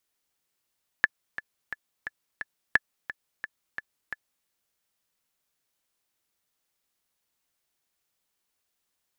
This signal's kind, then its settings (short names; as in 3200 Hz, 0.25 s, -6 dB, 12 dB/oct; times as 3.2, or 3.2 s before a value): metronome 175 bpm, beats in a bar 5, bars 2, 1730 Hz, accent 14.5 dB -5.5 dBFS